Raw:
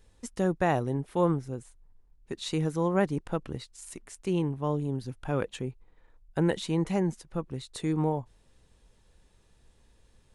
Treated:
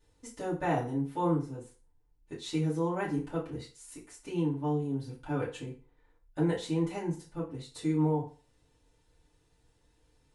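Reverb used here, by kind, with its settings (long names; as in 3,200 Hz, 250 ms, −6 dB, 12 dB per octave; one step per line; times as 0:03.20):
feedback delay network reverb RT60 0.37 s, low-frequency decay 0.9×, high-frequency decay 0.85×, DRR −8 dB
level −12.5 dB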